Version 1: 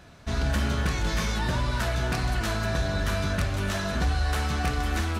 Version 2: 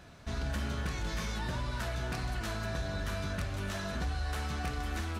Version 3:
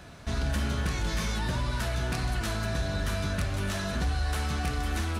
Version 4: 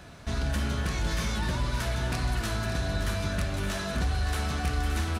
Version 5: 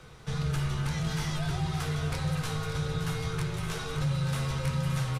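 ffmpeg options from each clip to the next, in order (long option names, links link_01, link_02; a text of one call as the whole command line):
ffmpeg -i in.wav -af "acompressor=threshold=-39dB:ratio=1.5,volume=-3dB" out.wav
ffmpeg -i in.wav -filter_complex "[0:a]equalizer=frequency=9800:width_type=o:width=0.32:gain=4,acrossover=split=340|2400[link_01][link_02][link_03];[link_02]asoftclip=type=tanh:threshold=-37.5dB[link_04];[link_01][link_04][link_03]amix=inputs=3:normalize=0,volume=6dB" out.wav
ffmpeg -i in.wav -af "aecho=1:1:570:0.355" out.wav
ffmpeg -i in.wav -filter_complex "[0:a]asplit=2[link_01][link_02];[link_02]adelay=14,volume=-13dB[link_03];[link_01][link_03]amix=inputs=2:normalize=0,afreqshift=-210,volume=-2.5dB" out.wav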